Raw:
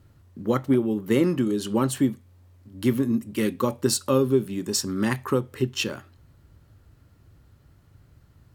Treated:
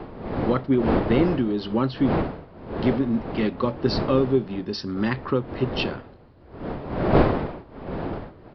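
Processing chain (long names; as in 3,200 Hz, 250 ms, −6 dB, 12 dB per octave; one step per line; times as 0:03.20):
wind on the microphone 510 Hz −28 dBFS
downsampling to 11,025 Hz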